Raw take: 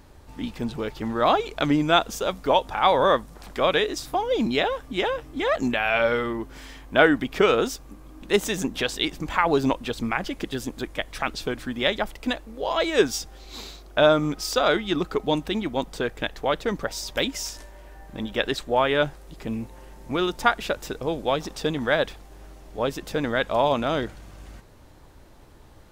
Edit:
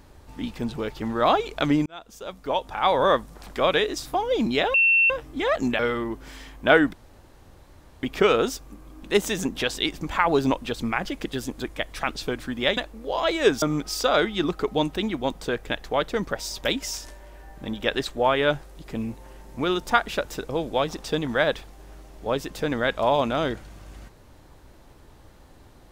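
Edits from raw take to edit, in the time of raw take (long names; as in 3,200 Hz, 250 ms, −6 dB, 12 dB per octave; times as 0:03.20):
0:01.86–0:03.14: fade in
0:04.74–0:05.10: beep over 2,700 Hz −15 dBFS
0:05.79–0:06.08: remove
0:07.22: splice in room tone 1.10 s
0:11.96–0:12.30: remove
0:13.15–0:14.14: remove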